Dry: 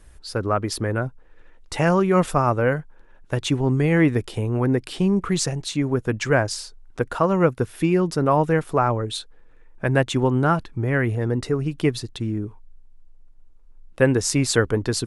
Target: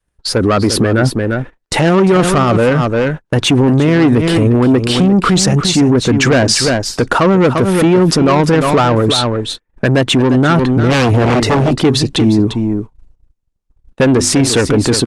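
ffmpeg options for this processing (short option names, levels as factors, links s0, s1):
-filter_complex "[0:a]asoftclip=type=tanh:threshold=0.0944,adynamicequalizer=threshold=0.01:dfrequency=250:dqfactor=1.2:tfrequency=250:tqfactor=1.2:attack=5:release=100:ratio=0.375:range=2.5:mode=boostabove:tftype=bell,aecho=1:1:349:0.282,asplit=3[s0][s1][s2];[s0]afade=t=out:st=10.89:d=0.02[s3];[s1]aeval=exprs='0.0708*(abs(mod(val(0)/0.0708+3,4)-2)-1)':c=same,afade=t=in:st=10.89:d=0.02,afade=t=out:st=11.78:d=0.02[s4];[s2]afade=t=in:st=11.78:d=0.02[s5];[s3][s4][s5]amix=inputs=3:normalize=0,acontrast=74,asplit=3[s6][s7][s8];[s6]afade=t=out:st=14.01:d=0.02[s9];[s7]bandreject=f=50:t=h:w=6,bandreject=f=100:t=h:w=6,bandreject=f=150:t=h:w=6,bandreject=f=200:t=h:w=6,bandreject=f=250:t=h:w=6,bandreject=f=300:t=h:w=6,bandreject=f=350:t=h:w=6,afade=t=in:st=14.01:d=0.02,afade=t=out:st=14.49:d=0.02[s10];[s8]afade=t=in:st=14.49:d=0.02[s11];[s9][s10][s11]amix=inputs=3:normalize=0,agate=range=0.0141:threshold=0.0224:ratio=16:detection=peak,lowpass=8700,asettb=1/sr,asplit=3[s12][s13][s14];[s12]atrim=end=9.874[s15];[s13]atrim=start=9.87:end=10.37,asetpts=PTS-STARTPTS,afade=t=in:d=0.004:c=qsin,afade=t=out:st=0.496:d=0.004:c=qsin,acompressor=threshold=0.126:ratio=16[s16];[s14]atrim=start=10.366[s17];[s15][s16]acrossfade=d=0.004:c1=hsin:c2=qsin[s18];[s18][s17]acrossfade=d=0.004:c1=qsin:c2=hsin,lowshelf=f=63:g=-11.5,alimiter=level_in=7.5:limit=0.891:release=50:level=0:latency=1,volume=0.708" -ar 48000 -c:a libopus -b:a 32k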